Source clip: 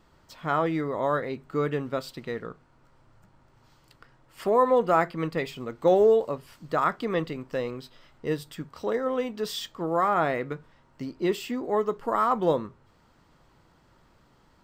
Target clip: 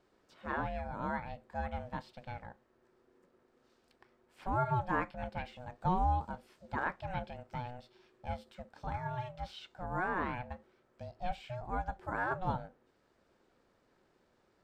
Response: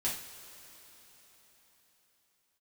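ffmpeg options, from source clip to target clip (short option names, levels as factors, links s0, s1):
-filter_complex "[0:a]aeval=exprs='val(0)*sin(2*PI*370*n/s)':c=same,lowpass=12000,acrossover=split=3800[s0][s1];[s1]acompressor=threshold=0.00112:ratio=4:attack=1:release=60[s2];[s0][s2]amix=inputs=2:normalize=0,volume=0.398"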